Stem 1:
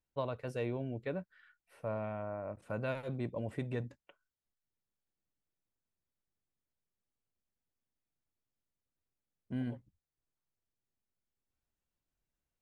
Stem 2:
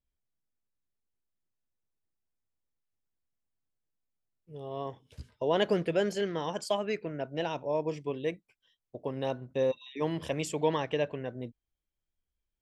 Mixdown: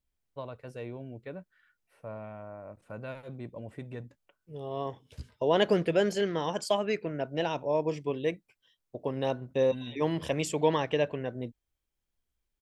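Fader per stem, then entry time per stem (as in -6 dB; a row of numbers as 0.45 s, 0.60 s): -3.5 dB, +2.5 dB; 0.20 s, 0.00 s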